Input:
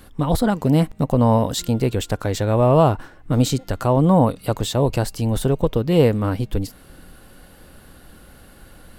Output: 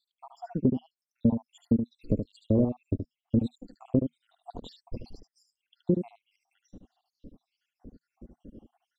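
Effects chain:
time-frequency cells dropped at random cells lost 84%
drawn EQ curve 160 Hz 0 dB, 240 Hz +10 dB, 510 Hz 0 dB, 1,600 Hz −28 dB, 3,500 Hz −13 dB, 7,700 Hz −9 dB
downward compressor 3 to 1, threshold −22 dBFS, peak gain reduction 10 dB
high-frequency loss of the air 180 metres
on a send: single-tap delay 74 ms −7.5 dB

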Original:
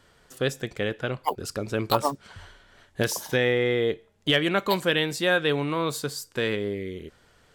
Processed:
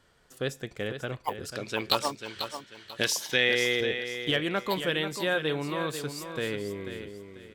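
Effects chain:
0:01.52–0:03.81: meter weighting curve D
repeating echo 491 ms, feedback 30%, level −9 dB
level −5.5 dB

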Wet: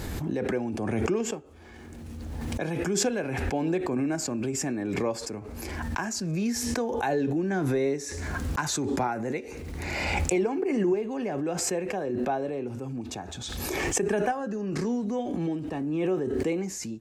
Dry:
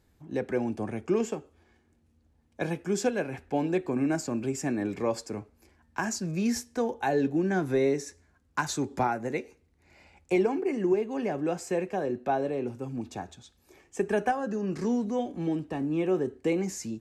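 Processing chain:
background raised ahead of every attack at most 21 dB per second
level −1.5 dB

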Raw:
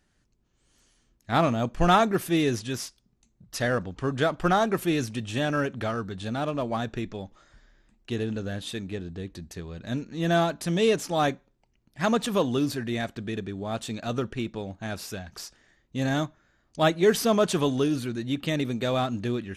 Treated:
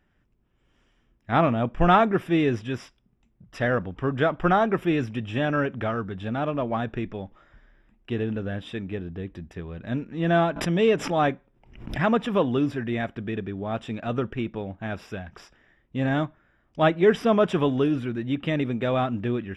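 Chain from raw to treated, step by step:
Savitzky-Golay smoothing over 25 samples
0:10.56–0:12.07: background raised ahead of every attack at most 89 dB per second
level +2 dB

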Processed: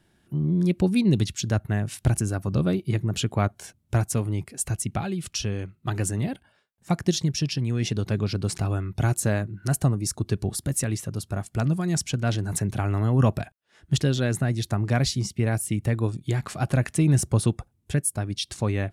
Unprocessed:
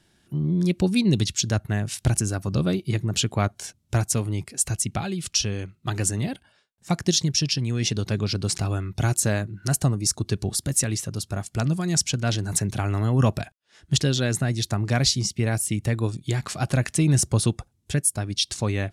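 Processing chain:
parametric band 5,500 Hz −8 dB 1.9 octaves

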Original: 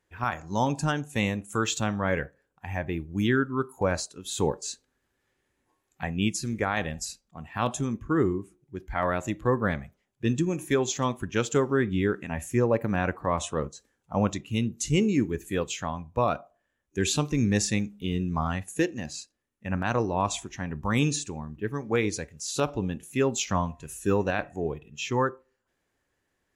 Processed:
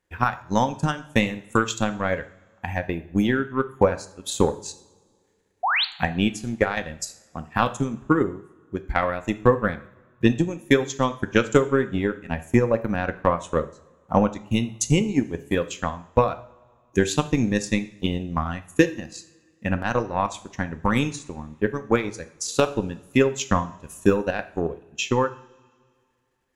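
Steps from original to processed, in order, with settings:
transient designer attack +12 dB, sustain −11 dB
sound drawn into the spectrogram rise, 0:05.63–0:05.85, 650–4,700 Hz −20 dBFS
coupled-rooms reverb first 0.51 s, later 2.2 s, from −21 dB, DRR 9.5 dB
level −1.5 dB

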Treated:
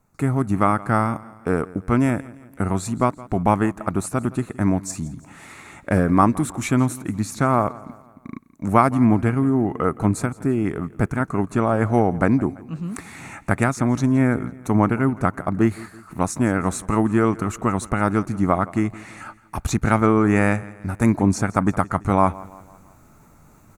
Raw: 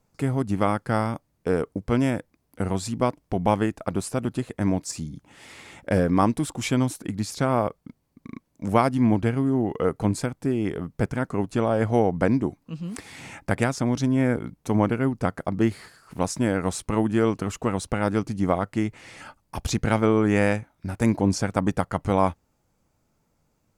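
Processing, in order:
thirty-one-band graphic EQ 500 Hz −7 dB, 1,250 Hz +6 dB, 3,150 Hz −11 dB, 5,000 Hz −11 dB
reversed playback
upward compression, threshold −41 dBFS
reversed playback
repeating echo 168 ms, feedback 47%, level −20 dB
level +4 dB

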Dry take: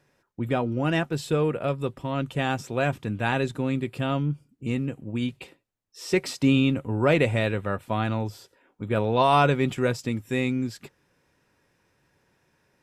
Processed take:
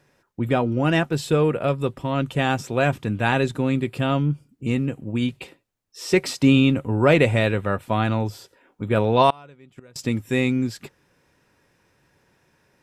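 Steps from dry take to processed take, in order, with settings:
0:09.30–0:09.96: gate with flip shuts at −19 dBFS, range −30 dB
level +4.5 dB

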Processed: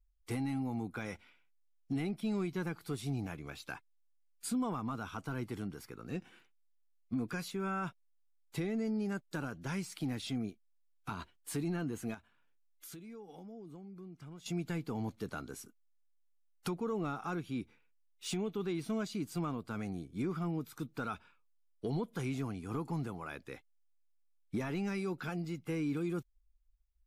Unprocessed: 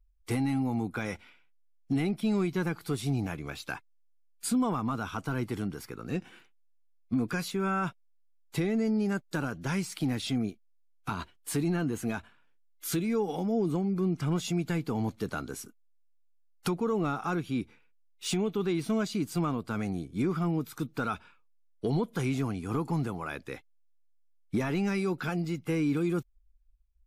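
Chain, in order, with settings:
0:12.14–0:14.46: downward compressor 3 to 1, threshold −45 dBFS, peak gain reduction 15 dB
level −7 dB

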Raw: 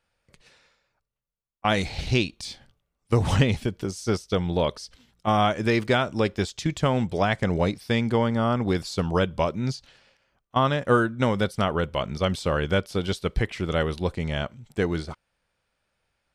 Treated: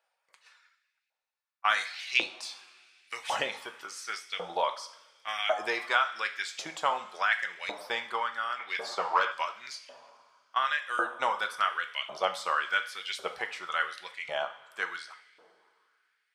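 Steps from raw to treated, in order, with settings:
reverb reduction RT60 0.7 s
coupled-rooms reverb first 0.51 s, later 2.8 s, from −17 dB, DRR 5 dB
0:08.59–0:09.32: mid-hump overdrive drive 15 dB, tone 1,500 Hz, clips at −10 dBFS
auto-filter high-pass saw up 0.91 Hz 660–2,300 Hz
level −4.5 dB

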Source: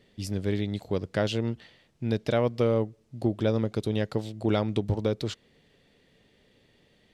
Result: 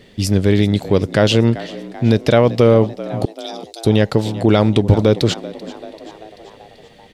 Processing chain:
0:03.25–0:03.85: inverse Chebyshev high-pass filter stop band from 850 Hz, stop band 70 dB
echo with shifted repeats 387 ms, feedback 60%, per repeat +73 Hz, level −19 dB
boost into a limiter +16.5 dB
level −1 dB

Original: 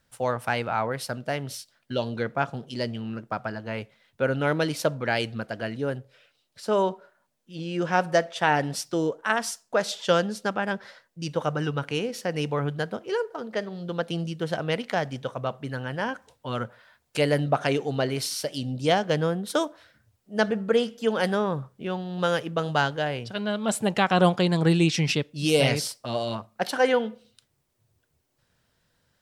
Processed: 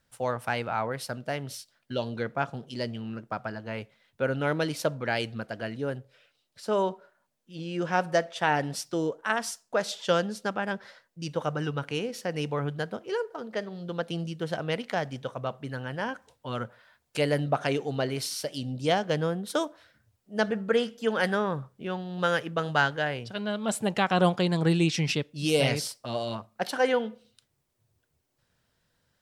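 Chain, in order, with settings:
0:20.46–0:23.14: dynamic equaliser 1,700 Hz, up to +6 dB, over −41 dBFS, Q 1.5
level −3 dB

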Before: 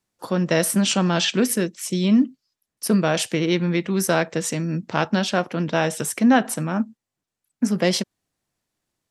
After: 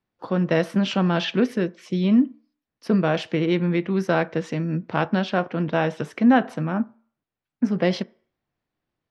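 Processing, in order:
high-frequency loss of the air 270 metres
on a send: convolution reverb RT60 0.50 s, pre-delay 3 ms, DRR 18 dB

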